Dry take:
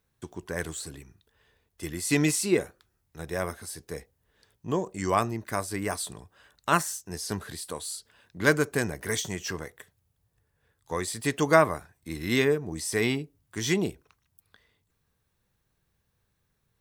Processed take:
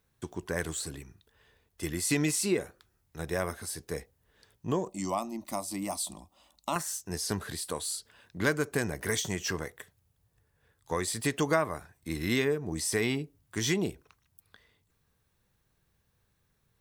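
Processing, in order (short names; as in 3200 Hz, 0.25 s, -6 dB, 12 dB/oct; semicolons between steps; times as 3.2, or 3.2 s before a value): compressor 2.5:1, threshold -28 dBFS, peak gain reduction 10 dB; 4.89–6.76 fixed phaser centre 430 Hz, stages 6; gain +1.5 dB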